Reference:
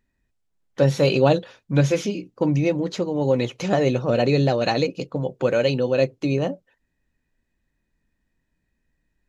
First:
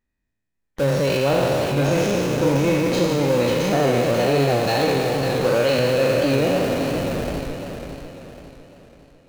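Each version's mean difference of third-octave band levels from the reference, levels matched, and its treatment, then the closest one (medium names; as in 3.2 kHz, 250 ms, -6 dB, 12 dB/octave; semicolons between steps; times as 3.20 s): 12.5 dB: spectral sustain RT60 2.32 s; level rider gain up to 10 dB; in parallel at -4 dB: Schmitt trigger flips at -27 dBFS; on the sum: modulated delay 550 ms, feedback 42%, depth 97 cents, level -7 dB; trim -9 dB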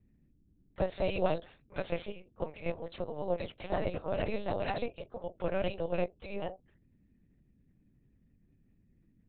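6.5 dB: steep high-pass 350 Hz 96 dB/octave; hum 50 Hz, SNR 30 dB; AM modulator 190 Hz, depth 95%; LPC vocoder at 8 kHz pitch kept; trim -7 dB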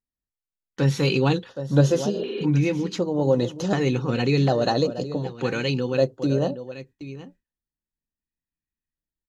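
3.5 dB: delay 771 ms -13.5 dB; spectral replace 2.16–2.42 s, 220–4300 Hz before; LFO notch square 0.67 Hz 610–2300 Hz; gate with hold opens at -36 dBFS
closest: third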